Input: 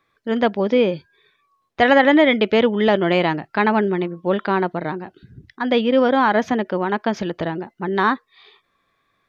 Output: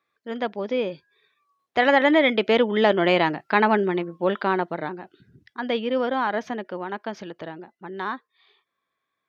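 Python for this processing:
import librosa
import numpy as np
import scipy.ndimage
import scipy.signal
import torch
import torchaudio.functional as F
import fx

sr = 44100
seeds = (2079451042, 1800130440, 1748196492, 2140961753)

y = fx.doppler_pass(x, sr, speed_mps=6, closest_m=8.2, pass_at_s=3.45)
y = fx.highpass(y, sr, hz=260.0, slope=6)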